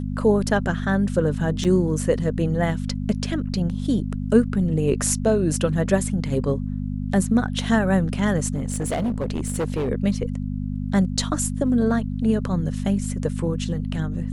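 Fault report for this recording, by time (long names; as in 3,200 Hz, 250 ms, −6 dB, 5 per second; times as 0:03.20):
mains hum 50 Hz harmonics 5 −27 dBFS
0:01.64–0:01.65: drop-out 6.5 ms
0:08.54–0:09.90: clipping −20 dBFS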